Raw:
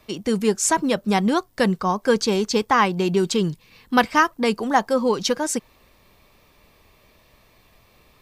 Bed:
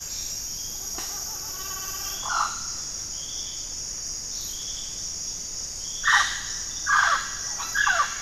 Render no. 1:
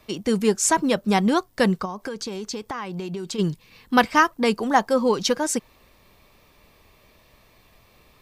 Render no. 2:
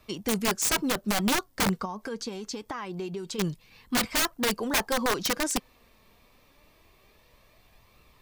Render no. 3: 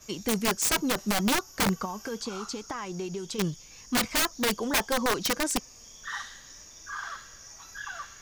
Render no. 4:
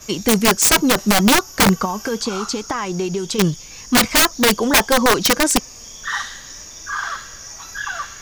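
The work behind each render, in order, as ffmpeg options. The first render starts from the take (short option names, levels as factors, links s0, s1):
-filter_complex "[0:a]asplit=3[s0][s1][s2];[s0]afade=t=out:st=1.84:d=0.02[s3];[s1]acompressor=threshold=0.0447:ratio=10:attack=3.2:release=140:knee=1:detection=peak,afade=t=in:st=1.84:d=0.02,afade=t=out:st=3.38:d=0.02[s4];[s2]afade=t=in:st=3.38:d=0.02[s5];[s3][s4][s5]amix=inputs=3:normalize=0"
-af "flanger=delay=0.7:depth=3.9:regen=66:speed=0.25:shape=triangular,aeval=exprs='(mod(8.41*val(0)+1,2)-1)/8.41':c=same"
-filter_complex "[1:a]volume=0.141[s0];[0:a][s0]amix=inputs=2:normalize=0"
-af "volume=3.98"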